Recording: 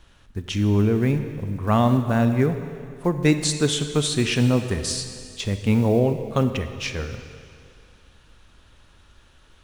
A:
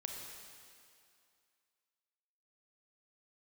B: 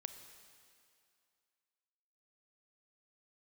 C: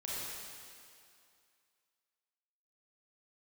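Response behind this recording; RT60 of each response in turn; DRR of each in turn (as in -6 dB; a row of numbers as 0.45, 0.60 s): B; 2.4, 2.4, 2.4 s; 1.0, 8.5, -7.5 dB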